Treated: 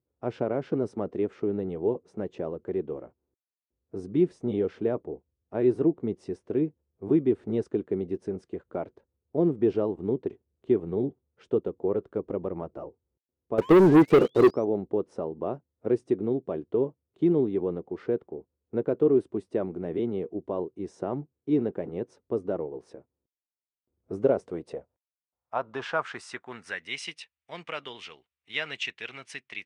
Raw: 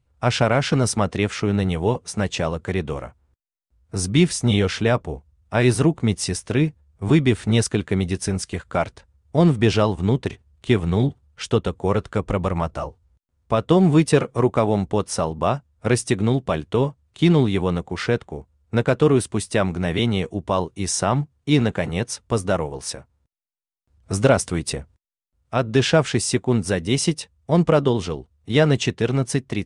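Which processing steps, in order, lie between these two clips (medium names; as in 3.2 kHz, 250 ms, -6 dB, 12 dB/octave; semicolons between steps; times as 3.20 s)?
13.61–14.65 s: painted sound rise 940–6200 Hz -32 dBFS; band-pass sweep 370 Hz -> 2.4 kHz, 24.15–27.10 s; 13.58–14.51 s: waveshaping leveller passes 3; trim -1.5 dB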